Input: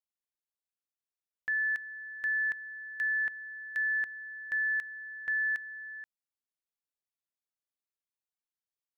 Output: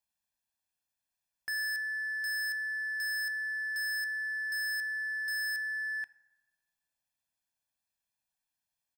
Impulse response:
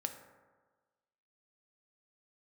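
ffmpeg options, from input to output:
-filter_complex "[0:a]aecho=1:1:1.2:0.88,asoftclip=type=hard:threshold=-36dB,asplit=2[a][b];[1:a]atrim=start_sample=2205[c];[b][c]afir=irnorm=-1:irlink=0,volume=-5dB[d];[a][d]amix=inputs=2:normalize=0"

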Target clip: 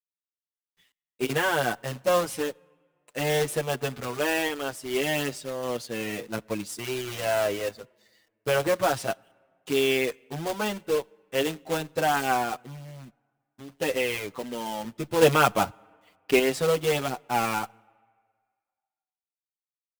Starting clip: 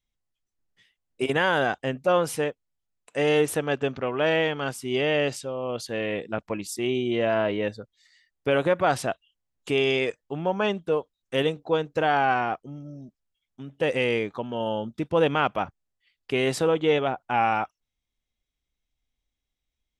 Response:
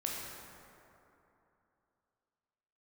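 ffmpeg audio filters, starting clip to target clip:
-filter_complex "[0:a]acrusher=bits=2:mode=log:mix=0:aa=0.000001,asettb=1/sr,asplit=3[a][b][c];[a]atrim=end=15.214[d];[b]atrim=start=15.21:end=16.39,asetpts=PTS-STARTPTS,afade=t=in:d=0.004:c=qsin,afade=t=out:st=1.176:d=0.004:c=qsin,acontrast=68[e];[c]atrim=start=16.386[f];[d][e]acrossfade=d=0.004:c1=hsin:c2=qsin[g];[g][f]acrossfade=d=0.004:c1=qsin:c2=hsin,acrusher=bits=10:mix=0:aa=0.000001,asplit=2[h][i];[1:a]atrim=start_sample=2205,asetrate=70560,aresample=44100[j];[i][j]afir=irnorm=-1:irlink=0,volume=-25.5dB[k];[h][k]amix=inputs=2:normalize=0,asplit=2[l][m];[m]adelay=7,afreqshift=-0.44[n];[l][n]amix=inputs=2:normalize=1"

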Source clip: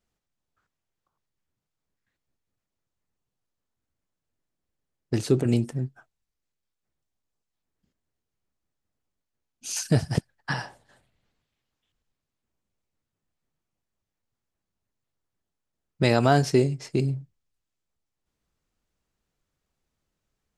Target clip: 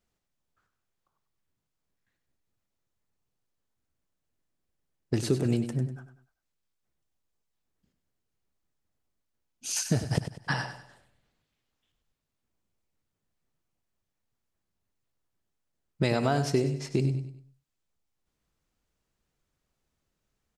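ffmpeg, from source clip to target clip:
-filter_complex "[0:a]acompressor=threshold=-22dB:ratio=4,asplit=2[a][b];[b]aecho=0:1:98|196|294|392:0.299|0.11|0.0409|0.0151[c];[a][c]amix=inputs=2:normalize=0"

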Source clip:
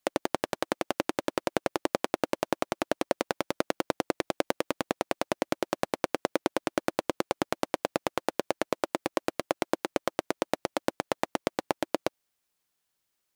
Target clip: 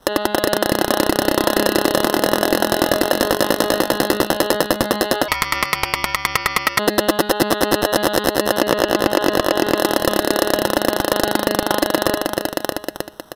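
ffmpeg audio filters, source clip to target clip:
-filter_complex "[0:a]aecho=1:1:313|626|939|1252:0.282|0.118|0.0497|0.0209,acrusher=samples=19:mix=1:aa=0.000001,bandreject=f=208.5:t=h:w=4,bandreject=f=417:t=h:w=4,bandreject=f=625.5:t=h:w=4,bandreject=f=834:t=h:w=4,bandreject=f=1.0425k:t=h:w=4,bandreject=f=1.251k:t=h:w=4,bandreject=f=1.4595k:t=h:w=4,bandreject=f=1.668k:t=h:w=4,bandreject=f=1.8765k:t=h:w=4,bandreject=f=2.085k:t=h:w=4,bandreject=f=2.2935k:t=h:w=4,bandreject=f=2.502k:t=h:w=4,bandreject=f=2.7105k:t=h:w=4,bandreject=f=2.919k:t=h:w=4,bandreject=f=3.1275k:t=h:w=4,bandreject=f=3.336k:t=h:w=4,bandreject=f=3.5445k:t=h:w=4,bandreject=f=3.753k:t=h:w=4,bandreject=f=3.9615k:t=h:w=4,bandreject=f=4.17k:t=h:w=4,bandreject=f=4.3785k:t=h:w=4,bandreject=f=4.587k:t=h:w=4,bandreject=f=4.7955k:t=h:w=4,asettb=1/sr,asplit=3[a][b][c];[a]atrim=end=5.284[d];[b]atrim=start=5.28:end=6.79,asetpts=PTS-STARTPTS,afade=t=in:d=0.004:c=qsin,afade=t=out:st=1.506:d=0.004:c=qsin,aeval=exprs='val(0)*sin(2*PI*1600*n/s)':c=same[e];[c]atrim=start=6.786[f];[d][e]acrossfade=d=0.004:c1=hsin:c2=qsin[g];[g][f]acrossfade=d=0.004:c1=qsin:c2=hsin,asettb=1/sr,asplit=3[h][i][j];[h]atrim=end=8.614[k];[i]atrim=start=8.61:end=9.76,asetpts=PTS-STARTPTS,afade=t=in:d=0.004:c=qsin,afade=t=out:st=1.146:d=0.004:c=qsin,acrossover=split=4700[l][m];[m]acompressor=threshold=-45dB:ratio=4:attack=1:release=60[n];[l][n]amix=inputs=2:normalize=0[o];[j]atrim=start=9.756[p];[k][o]acrossfade=d=0.004:c1=hsin:c2=qsin[q];[q][p]acrossfade=d=0.004:c1=qsin:c2=hsin,aexciter=amount=1.2:drive=6.7:freq=4.1k,asoftclip=type=tanh:threshold=-24.5dB,acompressor=threshold=-36dB:ratio=6,aresample=32000,aresample=44100,alimiter=level_in=31dB:limit=-1dB:release=50:level=0:latency=1,volume=-1.5dB"

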